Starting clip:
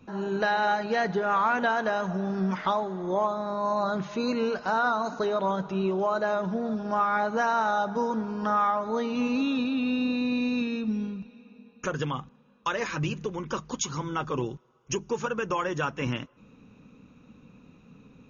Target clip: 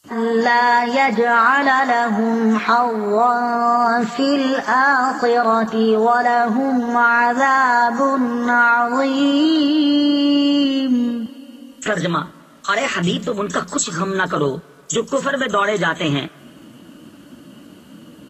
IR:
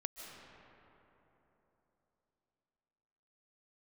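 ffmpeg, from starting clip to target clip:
-filter_complex "[0:a]highpass=f=150:p=1,bandreject=f=450:w=12,asplit=2[s0][s1];[s1]alimiter=limit=0.0794:level=0:latency=1:release=123,volume=1[s2];[s0][s2]amix=inputs=2:normalize=0,acrusher=bits=9:mix=0:aa=0.000001,asetrate=50951,aresample=44100,atempo=0.865537,acrossover=split=4900[s3][s4];[s3]adelay=40[s5];[s5][s4]amix=inputs=2:normalize=0,asplit=2[s6][s7];[1:a]atrim=start_sample=2205,asetrate=74970,aresample=44100[s8];[s7][s8]afir=irnorm=-1:irlink=0,volume=0.168[s9];[s6][s9]amix=inputs=2:normalize=0,volume=2.24" -ar 44100 -c:a libvorbis -b:a 32k

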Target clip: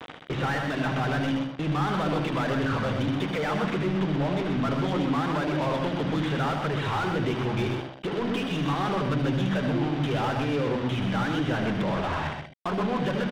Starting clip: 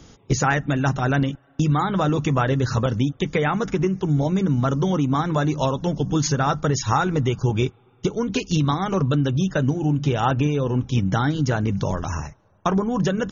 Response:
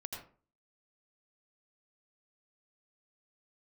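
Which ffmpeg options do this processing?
-filter_complex "[0:a]highshelf=f=2500:g=5.5,bandreject=f=66:t=h:w=4,bandreject=f=132:t=h:w=4,bandreject=f=198:t=h:w=4,bandreject=f=264:t=h:w=4,bandreject=f=330:t=h:w=4,asplit=2[s0][s1];[s1]acompressor=threshold=0.0501:ratio=20,volume=0.891[s2];[s0][s2]amix=inputs=2:normalize=0,asoftclip=type=tanh:threshold=0.282,aresample=8000,acrusher=bits=5:mix=0:aa=0.000001,aresample=44100,asplit=2[s3][s4];[s4]highpass=f=720:p=1,volume=25.1,asoftclip=type=tanh:threshold=0.316[s5];[s3][s5]amix=inputs=2:normalize=0,lowpass=f=1600:p=1,volume=0.501,aecho=1:1:126:0.501[s6];[1:a]atrim=start_sample=2205,atrim=end_sample=3528[s7];[s6][s7]afir=irnorm=-1:irlink=0,volume=0.447"

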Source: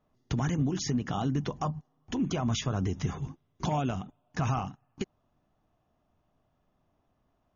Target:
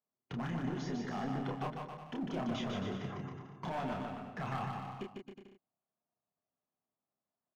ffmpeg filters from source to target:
-filter_complex "[0:a]highpass=190,afftdn=nr=16:nf=-49,lowpass=2700,equalizer=f=300:t=o:w=0.22:g=-7,asoftclip=type=hard:threshold=0.0316,asplit=2[s0][s1];[s1]adelay=30,volume=0.631[s2];[s0][s2]amix=inputs=2:normalize=0,asplit=2[s3][s4];[s4]aecho=0:1:150|270|366|442.8|504.2:0.631|0.398|0.251|0.158|0.1[s5];[s3][s5]amix=inputs=2:normalize=0,volume=0.531"

